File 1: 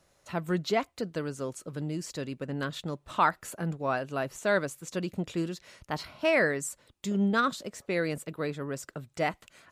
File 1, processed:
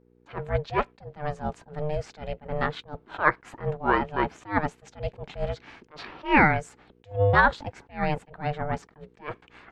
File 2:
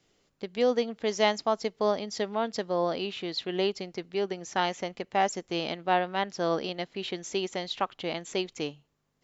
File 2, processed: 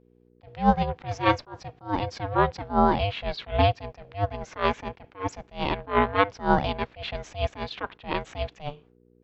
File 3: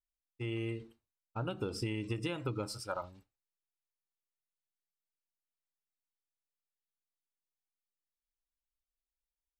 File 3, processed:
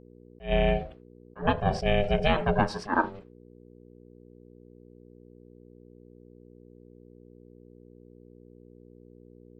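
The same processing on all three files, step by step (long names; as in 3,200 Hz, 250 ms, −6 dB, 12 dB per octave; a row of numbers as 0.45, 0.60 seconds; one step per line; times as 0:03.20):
noise gate with hold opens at −54 dBFS
low-pass filter 2,300 Hz 12 dB per octave
low-shelf EQ 260 Hz −5.5 dB
ring modulation 300 Hz
hum with harmonics 60 Hz, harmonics 8, −72 dBFS 0 dB per octave
level that may rise only so fast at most 220 dB per second
loudness normalisation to −27 LKFS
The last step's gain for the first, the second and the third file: +11.5, +12.5, +20.0 decibels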